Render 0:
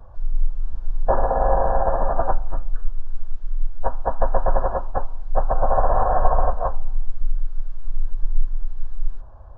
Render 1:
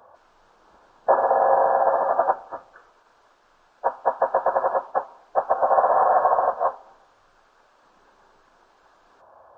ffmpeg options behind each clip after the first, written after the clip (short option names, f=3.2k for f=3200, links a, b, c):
-af "highpass=500,volume=4dB"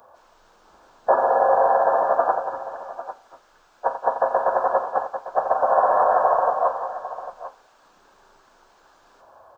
-af "crystalizer=i=1.5:c=0,aecho=1:1:43|87|182|798:0.251|0.266|0.316|0.211"